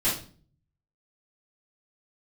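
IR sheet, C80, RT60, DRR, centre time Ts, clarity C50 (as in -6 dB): 11.5 dB, 0.45 s, -11.0 dB, 35 ms, 5.0 dB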